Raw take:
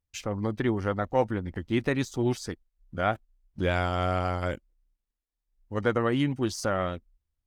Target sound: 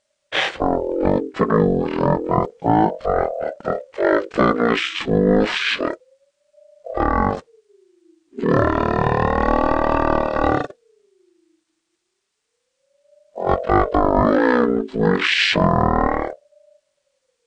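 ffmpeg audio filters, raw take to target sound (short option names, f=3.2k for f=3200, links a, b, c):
-af "tiltshelf=f=1.3k:g=-5.5,asetrate=18846,aresample=44100,alimiter=level_in=19.5dB:limit=-1dB:release=50:level=0:latency=1,aeval=exprs='val(0)*sin(2*PI*460*n/s+460*0.3/0.3*sin(2*PI*0.3*n/s))':c=same,volume=-2dB"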